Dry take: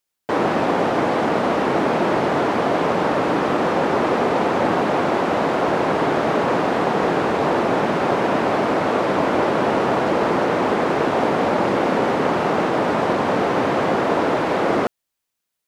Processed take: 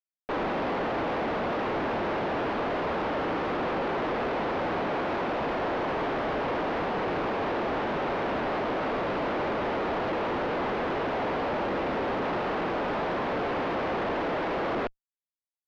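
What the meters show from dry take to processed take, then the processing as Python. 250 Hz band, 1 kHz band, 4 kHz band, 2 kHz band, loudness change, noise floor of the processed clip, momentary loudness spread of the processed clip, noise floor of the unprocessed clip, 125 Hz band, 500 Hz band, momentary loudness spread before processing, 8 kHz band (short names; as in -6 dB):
-11.0 dB, -9.5 dB, -8.5 dB, -8.0 dB, -10.0 dB, under -85 dBFS, 0 LU, -80 dBFS, -10.5 dB, -10.0 dB, 1 LU, under -15 dB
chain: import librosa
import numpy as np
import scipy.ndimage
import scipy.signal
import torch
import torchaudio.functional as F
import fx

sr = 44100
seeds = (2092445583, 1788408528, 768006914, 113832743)

y = fx.highpass(x, sr, hz=220.0, slope=6)
y = np.sign(y) * np.maximum(np.abs(y) - 10.0 ** (-34.0 / 20.0), 0.0)
y = fx.tube_stage(y, sr, drive_db=32.0, bias=0.5)
y = fx.air_absorb(y, sr, metres=280.0)
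y = y * librosa.db_to_amplitude(6.0)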